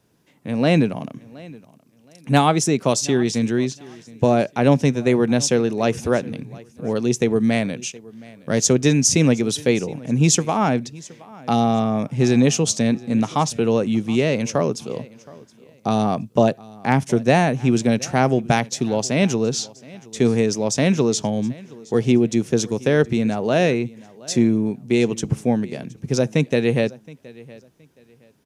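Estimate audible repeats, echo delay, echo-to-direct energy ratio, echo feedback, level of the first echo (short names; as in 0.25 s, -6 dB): 2, 0.72 s, -21.5 dB, 26%, -22.0 dB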